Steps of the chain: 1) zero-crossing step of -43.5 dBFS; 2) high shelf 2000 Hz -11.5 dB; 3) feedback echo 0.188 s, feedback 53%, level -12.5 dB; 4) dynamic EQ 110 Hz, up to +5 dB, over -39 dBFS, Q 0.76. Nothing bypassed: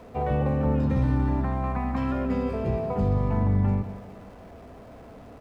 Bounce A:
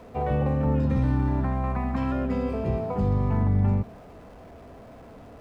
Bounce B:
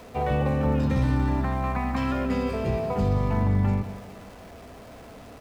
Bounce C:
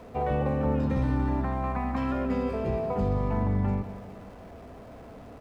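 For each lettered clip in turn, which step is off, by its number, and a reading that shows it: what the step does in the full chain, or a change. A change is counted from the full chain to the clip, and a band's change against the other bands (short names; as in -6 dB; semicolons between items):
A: 3, momentary loudness spread change -1 LU; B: 2, 2 kHz band +5.0 dB; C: 4, momentary loudness spread change +14 LU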